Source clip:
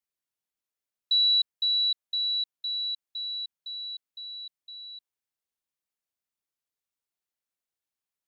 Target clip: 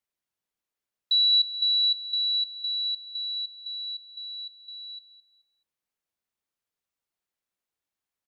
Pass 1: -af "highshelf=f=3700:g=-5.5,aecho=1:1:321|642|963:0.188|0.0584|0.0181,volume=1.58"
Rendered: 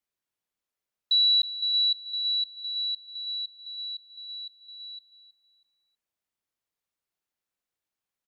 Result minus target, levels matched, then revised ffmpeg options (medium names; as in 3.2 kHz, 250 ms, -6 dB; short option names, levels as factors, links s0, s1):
echo 107 ms late
-af "highshelf=f=3700:g=-5.5,aecho=1:1:214|428|642:0.188|0.0584|0.0181,volume=1.58"